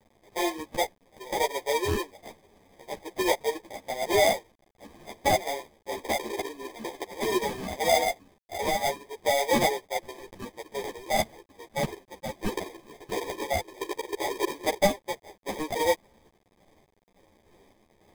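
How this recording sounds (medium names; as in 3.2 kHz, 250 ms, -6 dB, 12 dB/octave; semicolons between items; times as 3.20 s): aliases and images of a low sample rate 1.4 kHz, jitter 0%; random-step tremolo; a quantiser's noise floor 10-bit, dither none; a shimmering, thickened sound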